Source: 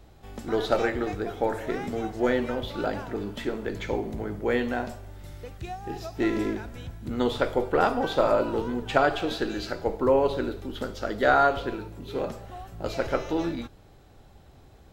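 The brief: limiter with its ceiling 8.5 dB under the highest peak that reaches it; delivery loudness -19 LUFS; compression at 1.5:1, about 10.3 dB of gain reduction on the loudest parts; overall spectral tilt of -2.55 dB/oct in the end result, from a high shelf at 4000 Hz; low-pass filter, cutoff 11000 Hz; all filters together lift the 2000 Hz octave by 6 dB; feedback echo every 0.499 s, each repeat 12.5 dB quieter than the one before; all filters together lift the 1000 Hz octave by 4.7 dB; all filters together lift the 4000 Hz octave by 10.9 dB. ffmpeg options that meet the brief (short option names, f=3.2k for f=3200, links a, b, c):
-af "lowpass=11k,equalizer=f=1k:t=o:g=5,equalizer=f=2k:t=o:g=3,highshelf=f=4k:g=8,equalizer=f=4k:t=o:g=7.5,acompressor=threshold=-41dB:ratio=1.5,alimiter=limit=-20dB:level=0:latency=1,aecho=1:1:499|998|1497:0.237|0.0569|0.0137,volume=14.5dB"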